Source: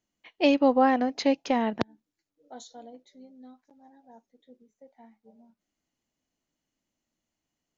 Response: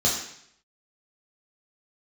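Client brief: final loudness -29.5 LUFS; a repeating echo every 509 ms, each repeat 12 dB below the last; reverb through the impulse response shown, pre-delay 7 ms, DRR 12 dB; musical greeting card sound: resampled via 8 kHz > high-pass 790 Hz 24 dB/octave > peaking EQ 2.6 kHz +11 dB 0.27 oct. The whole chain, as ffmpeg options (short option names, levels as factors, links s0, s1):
-filter_complex "[0:a]aecho=1:1:509|1018|1527:0.251|0.0628|0.0157,asplit=2[s0][s1];[1:a]atrim=start_sample=2205,adelay=7[s2];[s1][s2]afir=irnorm=-1:irlink=0,volume=0.0562[s3];[s0][s3]amix=inputs=2:normalize=0,aresample=8000,aresample=44100,highpass=f=790:w=0.5412,highpass=f=790:w=1.3066,equalizer=f=2600:t=o:w=0.27:g=11,volume=0.841"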